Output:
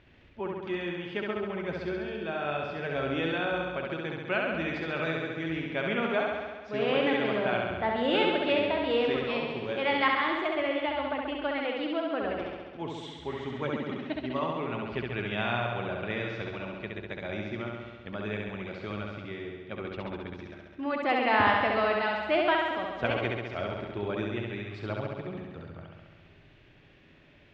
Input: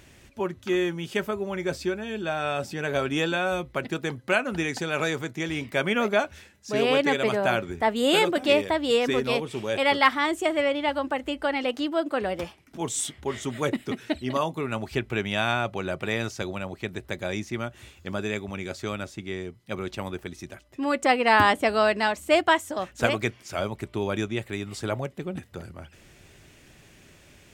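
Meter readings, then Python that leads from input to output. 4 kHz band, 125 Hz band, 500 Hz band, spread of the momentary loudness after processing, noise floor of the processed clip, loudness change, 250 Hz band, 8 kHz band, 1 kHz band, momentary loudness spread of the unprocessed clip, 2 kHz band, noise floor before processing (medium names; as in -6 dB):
-5.5 dB, -3.5 dB, -4.0 dB, 13 LU, -56 dBFS, -4.0 dB, -4.0 dB, under -25 dB, -4.0 dB, 13 LU, -4.0 dB, -54 dBFS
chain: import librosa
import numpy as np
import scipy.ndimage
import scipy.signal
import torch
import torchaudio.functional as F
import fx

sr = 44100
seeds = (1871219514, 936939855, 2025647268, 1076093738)

y = scipy.signal.sosfilt(scipy.signal.butter(4, 3600.0, 'lowpass', fs=sr, output='sos'), x)
y = fx.room_flutter(y, sr, wall_m=11.6, rt60_s=1.4)
y = y * librosa.db_to_amplitude(-7.0)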